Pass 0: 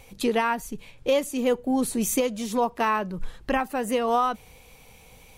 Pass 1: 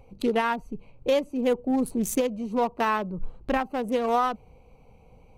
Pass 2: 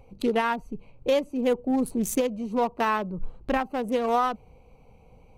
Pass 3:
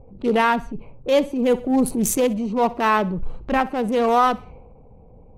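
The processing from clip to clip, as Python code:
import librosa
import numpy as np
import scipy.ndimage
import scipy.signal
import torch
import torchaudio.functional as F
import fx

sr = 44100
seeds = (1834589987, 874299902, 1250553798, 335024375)

y1 = fx.wiener(x, sr, points=25)
y2 = y1
y3 = fx.echo_feedback(y2, sr, ms=63, feedback_pct=39, wet_db=-22.0)
y3 = fx.env_lowpass(y3, sr, base_hz=550.0, full_db=-24.5)
y3 = fx.transient(y3, sr, attack_db=-8, sustain_db=3)
y3 = y3 * librosa.db_to_amplitude(7.5)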